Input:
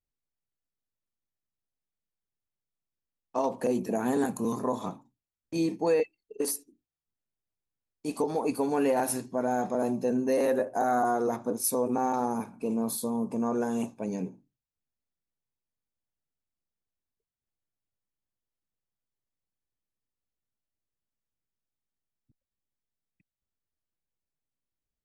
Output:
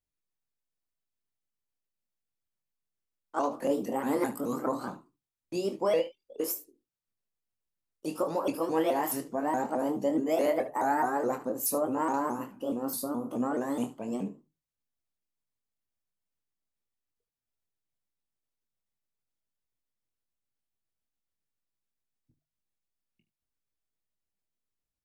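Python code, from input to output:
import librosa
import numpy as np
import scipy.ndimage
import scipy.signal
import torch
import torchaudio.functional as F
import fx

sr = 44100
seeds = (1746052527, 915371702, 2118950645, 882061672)

y = fx.pitch_ramps(x, sr, semitones=4.5, every_ms=212)
y = fx.hum_notches(y, sr, base_hz=50, count=3)
y = fx.room_early_taps(y, sr, ms=(25, 74), db=(-9.0, -15.5))
y = y * librosa.db_to_amplitude(-1.0)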